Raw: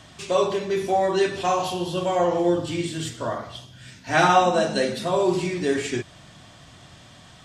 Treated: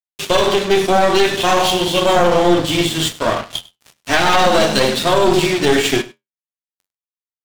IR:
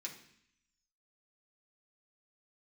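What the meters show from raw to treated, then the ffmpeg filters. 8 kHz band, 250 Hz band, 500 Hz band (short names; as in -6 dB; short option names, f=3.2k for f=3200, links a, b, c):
+11.0 dB, +7.5 dB, +7.5 dB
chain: -af "highpass=f=110:p=1,equalizer=f=3.3k:w=2:g=7,bandreject=f=60:t=h:w=6,bandreject=f=120:t=h:w=6,bandreject=f=180:t=h:w=6,aeval=exprs='sgn(val(0))*max(abs(val(0))-0.0178,0)':c=same,flanger=delay=6.5:depth=6.2:regen=-63:speed=0.39:shape=triangular,aeval=exprs='clip(val(0),-1,0.0211)':c=same,aecho=1:1:100:0.0891,alimiter=level_in=20dB:limit=-1dB:release=50:level=0:latency=1,volume=-1dB"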